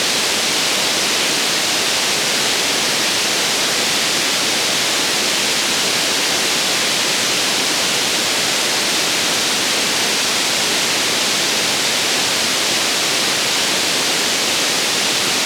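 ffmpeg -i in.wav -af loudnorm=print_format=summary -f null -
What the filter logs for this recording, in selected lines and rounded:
Input Integrated:    -14.6 LUFS
Input True Peak:      -3.2 dBTP
Input LRA:             0.0 LU
Input Threshold:     -24.6 LUFS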